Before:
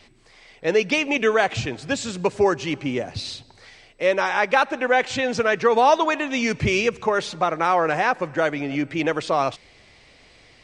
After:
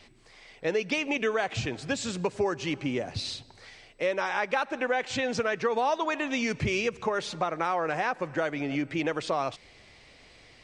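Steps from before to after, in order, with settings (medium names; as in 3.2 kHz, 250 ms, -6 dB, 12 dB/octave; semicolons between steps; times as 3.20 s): compression 2.5:1, threshold -24 dBFS, peak gain reduction 8.5 dB; trim -2.5 dB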